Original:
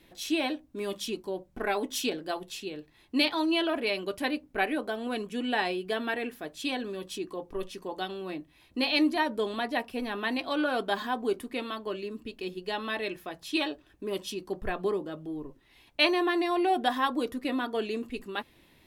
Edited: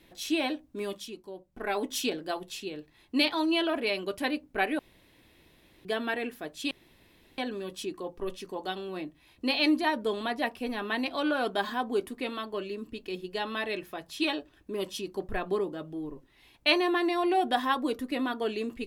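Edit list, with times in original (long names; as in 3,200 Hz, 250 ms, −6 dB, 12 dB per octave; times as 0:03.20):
0:00.82–0:01.79: duck −8.5 dB, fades 0.27 s
0:04.79–0:05.85: fill with room tone
0:06.71: splice in room tone 0.67 s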